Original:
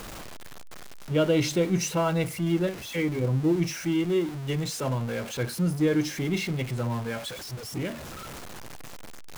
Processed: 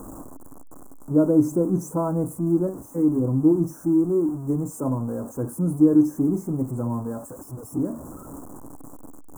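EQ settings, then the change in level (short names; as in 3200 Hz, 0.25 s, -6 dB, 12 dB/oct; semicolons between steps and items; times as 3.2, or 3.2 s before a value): elliptic band-stop 1100–7700 Hz, stop band 60 dB; bell 280 Hz +14 dB 0.44 oct; bell 1800 Hz +2 dB; 0.0 dB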